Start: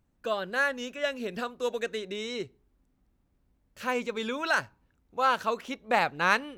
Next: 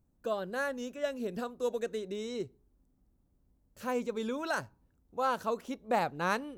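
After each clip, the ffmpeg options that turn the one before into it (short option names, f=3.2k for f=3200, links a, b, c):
-af "equalizer=f=2.4k:t=o:w=2.3:g=-12"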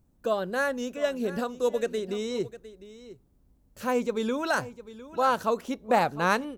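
-af "aecho=1:1:705:0.158,volume=6.5dB"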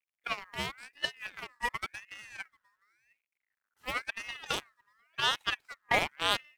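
-af "acrusher=bits=9:mix=0:aa=0.000001,aeval=exprs='0.316*(cos(1*acos(clip(val(0)/0.316,-1,1)))-cos(1*PI/2))+0.0316*(cos(3*acos(clip(val(0)/0.316,-1,1)))-cos(3*PI/2))+0.0282*(cos(7*acos(clip(val(0)/0.316,-1,1)))-cos(7*PI/2))':c=same,aeval=exprs='val(0)*sin(2*PI*1900*n/s+1900*0.25/0.93*sin(2*PI*0.93*n/s))':c=same"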